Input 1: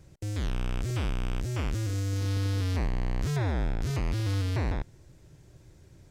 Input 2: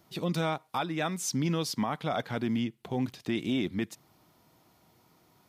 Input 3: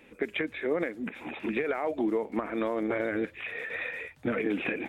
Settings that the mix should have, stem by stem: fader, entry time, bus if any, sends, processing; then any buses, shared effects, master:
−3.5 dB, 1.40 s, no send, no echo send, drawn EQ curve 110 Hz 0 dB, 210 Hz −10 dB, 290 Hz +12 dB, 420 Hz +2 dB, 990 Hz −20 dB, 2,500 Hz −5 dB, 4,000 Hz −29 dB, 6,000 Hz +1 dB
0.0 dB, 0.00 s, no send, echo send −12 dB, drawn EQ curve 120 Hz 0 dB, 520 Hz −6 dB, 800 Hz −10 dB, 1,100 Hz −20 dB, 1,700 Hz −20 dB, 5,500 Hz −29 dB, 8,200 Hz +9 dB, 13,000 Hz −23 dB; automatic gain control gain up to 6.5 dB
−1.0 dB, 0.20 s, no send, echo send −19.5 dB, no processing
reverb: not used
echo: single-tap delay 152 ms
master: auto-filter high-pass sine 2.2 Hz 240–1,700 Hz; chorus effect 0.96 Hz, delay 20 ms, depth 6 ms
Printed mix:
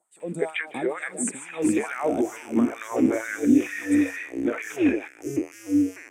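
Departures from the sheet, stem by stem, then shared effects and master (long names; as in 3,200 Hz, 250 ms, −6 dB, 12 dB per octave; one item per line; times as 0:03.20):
stem 1 −3.5 dB → +2.5 dB
master: missing chorus effect 0.96 Hz, delay 20 ms, depth 6 ms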